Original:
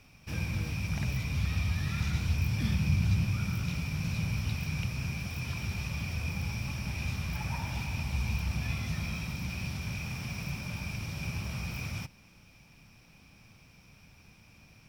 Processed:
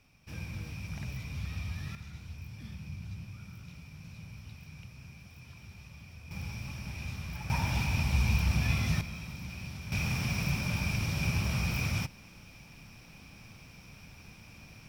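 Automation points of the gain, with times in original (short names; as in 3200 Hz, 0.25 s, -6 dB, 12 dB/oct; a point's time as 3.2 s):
-7 dB
from 1.95 s -15 dB
from 6.31 s -5 dB
from 7.5 s +4.5 dB
from 9.01 s -5.5 dB
from 9.92 s +5.5 dB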